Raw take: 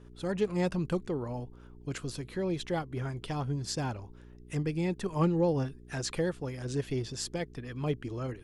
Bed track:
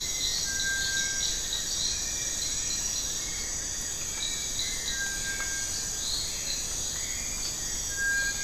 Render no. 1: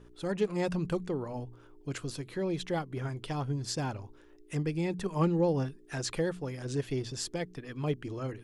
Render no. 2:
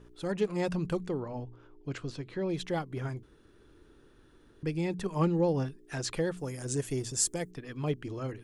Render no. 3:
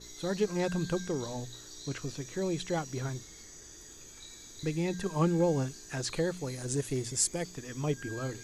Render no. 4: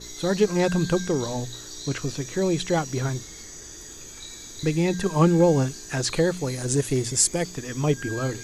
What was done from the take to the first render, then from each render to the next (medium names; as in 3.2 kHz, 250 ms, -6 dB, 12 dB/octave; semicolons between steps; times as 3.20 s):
de-hum 60 Hz, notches 4
1.20–2.49 s: distance through air 100 m; 3.23–4.63 s: room tone; 6.37–7.51 s: resonant high shelf 5.7 kHz +11 dB, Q 1.5
add bed track -18 dB
trim +9 dB; peak limiter -2 dBFS, peak gain reduction 2 dB